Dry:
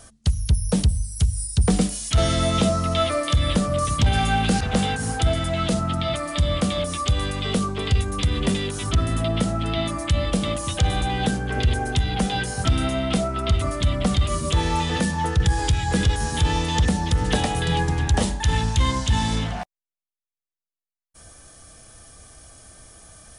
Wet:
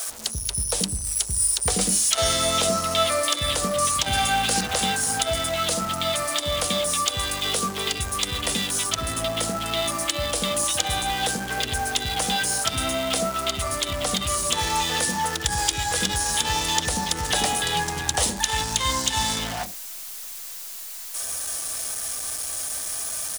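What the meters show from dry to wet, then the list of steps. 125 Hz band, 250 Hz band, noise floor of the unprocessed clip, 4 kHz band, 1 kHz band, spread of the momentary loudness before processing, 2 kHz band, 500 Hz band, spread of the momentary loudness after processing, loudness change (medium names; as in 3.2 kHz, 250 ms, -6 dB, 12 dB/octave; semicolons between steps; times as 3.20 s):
-12.0 dB, -8.5 dB, under -85 dBFS, +4.5 dB, +1.0 dB, 4 LU, +2.0 dB, -1.5 dB, 6 LU, -0.5 dB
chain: jump at every zero crossing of -31 dBFS; tone controls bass -14 dB, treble +8 dB; bands offset in time highs, lows 80 ms, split 410 Hz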